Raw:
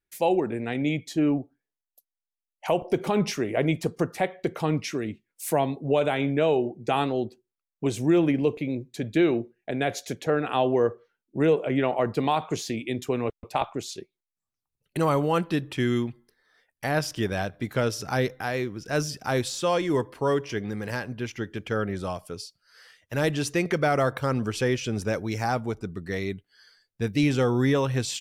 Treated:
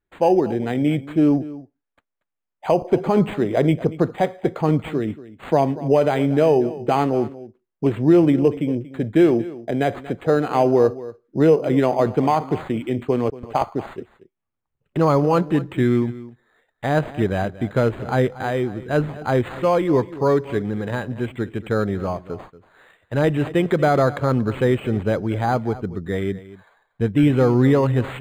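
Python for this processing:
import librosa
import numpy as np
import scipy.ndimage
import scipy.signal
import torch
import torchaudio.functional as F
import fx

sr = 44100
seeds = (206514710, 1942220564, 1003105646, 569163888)

p1 = fx.high_shelf(x, sr, hz=2600.0, db=-9.0)
p2 = p1 + fx.echo_single(p1, sr, ms=234, db=-17.0, dry=0)
p3 = np.interp(np.arange(len(p2)), np.arange(len(p2))[::8], p2[::8])
y = F.gain(torch.from_numpy(p3), 7.0).numpy()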